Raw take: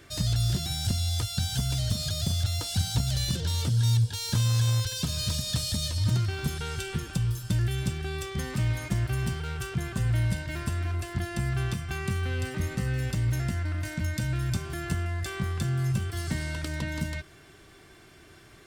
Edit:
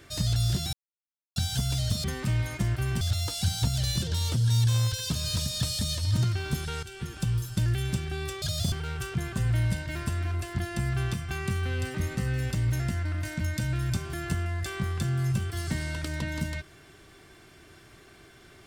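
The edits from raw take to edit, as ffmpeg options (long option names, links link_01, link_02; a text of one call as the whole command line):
ffmpeg -i in.wav -filter_complex "[0:a]asplit=9[link_01][link_02][link_03][link_04][link_05][link_06][link_07][link_08][link_09];[link_01]atrim=end=0.73,asetpts=PTS-STARTPTS,afade=type=out:start_time=0.726:duration=0.004:curve=hsin[link_10];[link_02]atrim=start=0.73:end=1.36,asetpts=PTS-STARTPTS,volume=0[link_11];[link_03]atrim=start=1.36:end=2.042,asetpts=PTS-STARTPTS,afade=type=in:duration=0.004:curve=hsin[link_12];[link_04]atrim=start=8.348:end=9.322[link_13];[link_05]atrim=start=2.338:end=4.002[link_14];[link_06]atrim=start=4.598:end=6.76,asetpts=PTS-STARTPTS,afade=type=out:start_time=2.158:duration=0.004:curve=hsin:silence=0.237137[link_15];[link_07]atrim=start=6.76:end=8.352,asetpts=PTS-STARTPTS,afade=type=in:duration=0.45:silence=0.237137[link_16];[link_08]atrim=start=2.038:end=2.342[link_17];[link_09]atrim=start=9.318[link_18];[link_10][link_11][link_12]concat=n=3:v=0:a=1[link_19];[link_19][link_13]acrossfade=duration=0.004:curve1=hsin:curve2=hsin[link_20];[link_20][link_14]acrossfade=duration=0.004:curve1=hsin:curve2=hsin[link_21];[link_15][link_16]concat=n=2:v=0:a=1[link_22];[link_21][link_22]acrossfade=duration=0.004:curve1=hsin:curve2=hsin[link_23];[link_23][link_17]acrossfade=duration=0.004:curve1=hsin:curve2=hsin[link_24];[link_24][link_18]acrossfade=duration=0.004:curve1=hsin:curve2=hsin" out.wav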